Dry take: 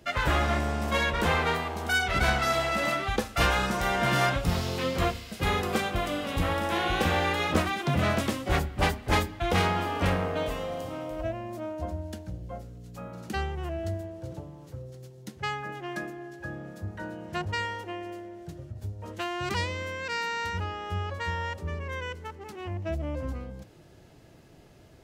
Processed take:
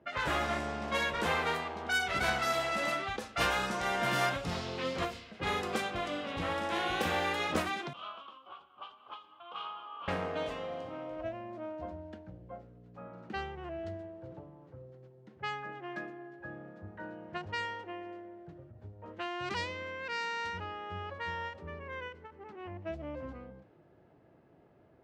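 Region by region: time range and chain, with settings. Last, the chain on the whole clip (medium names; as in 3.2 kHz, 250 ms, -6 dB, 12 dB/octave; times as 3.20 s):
7.93–10.08 s: upward compressor, threshold -27 dBFS + two resonant band-passes 1.9 kHz, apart 1.4 oct
whole clip: high-pass 230 Hz 6 dB/octave; level-controlled noise filter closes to 1.3 kHz, open at -23 dBFS; endings held to a fixed fall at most 140 dB/s; trim -4.5 dB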